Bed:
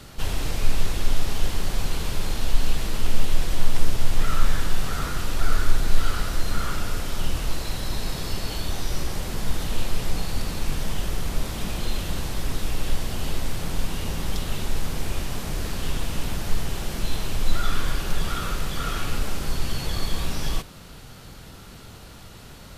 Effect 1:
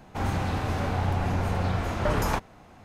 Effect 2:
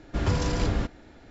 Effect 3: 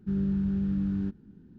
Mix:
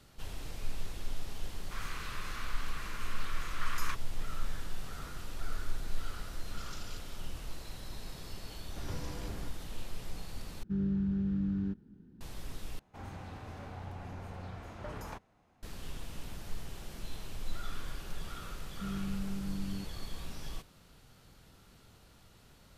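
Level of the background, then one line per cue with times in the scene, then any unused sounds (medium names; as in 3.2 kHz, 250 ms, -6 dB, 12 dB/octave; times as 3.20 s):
bed -16 dB
1.56 s: add 1 -6 dB + elliptic high-pass 1.1 kHz
6.31 s: add 2 -12.5 dB + steep high-pass 2.6 kHz
8.62 s: add 2 -16.5 dB
10.63 s: replace with 3 -4 dB
12.79 s: replace with 1 -17.5 dB
18.74 s: add 3 -10.5 dB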